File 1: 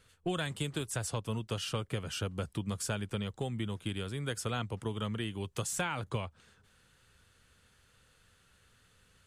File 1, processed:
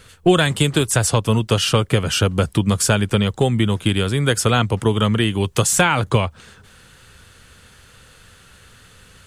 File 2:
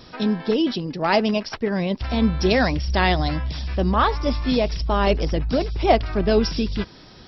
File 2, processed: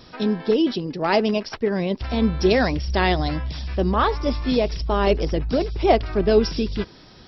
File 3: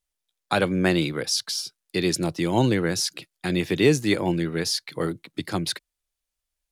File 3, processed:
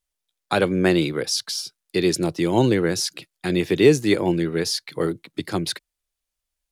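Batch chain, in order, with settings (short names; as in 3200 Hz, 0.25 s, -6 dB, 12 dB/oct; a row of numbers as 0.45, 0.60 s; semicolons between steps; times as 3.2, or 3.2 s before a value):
dynamic EQ 400 Hz, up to +5 dB, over -37 dBFS, Q 2; normalise peaks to -3 dBFS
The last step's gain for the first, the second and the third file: +18.0, -1.5, +0.5 dB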